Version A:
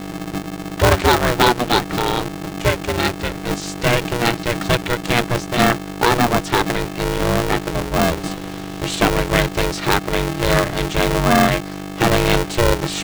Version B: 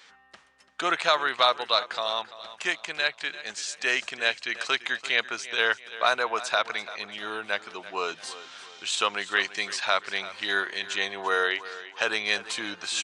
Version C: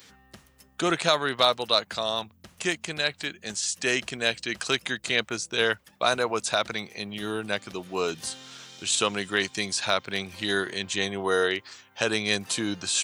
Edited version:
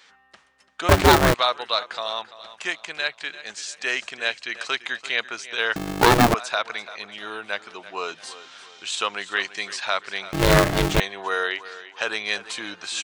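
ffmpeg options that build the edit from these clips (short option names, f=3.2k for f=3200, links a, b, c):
-filter_complex "[0:a]asplit=3[a][b][c];[1:a]asplit=4[d][e][f][g];[d]atrim=end=0.892[h];[a]atrim=start=0.888:end=1.342[i];[e]atrim=start=1.338:end=5.762[j];[b]atrim=start=5.758:end=6.342[k];[f]atrim=start=6.338:end=10.332[l];[c]atrim=start=10.328:end=11.002[m];[g]atrim=start=10.998[n];[h][i]acrossfade=d=0.004:c1=hsin:c2=hsin[o];[o][j]acrossfade=d=0.004:c1=hsin:c2=hsin[p];[p][k]acrossfade=d=0.004:c1=hsin:c2=hsin[q];[q][l]acrossfade=d=0.004:c1=hsin:c2=hsin[r];[r][m]acrossfade=d=0.004:c1=hsin:c2=hsin[s];[s][n]acrossfade=d=0.004:c1=hsin:c2=hsin"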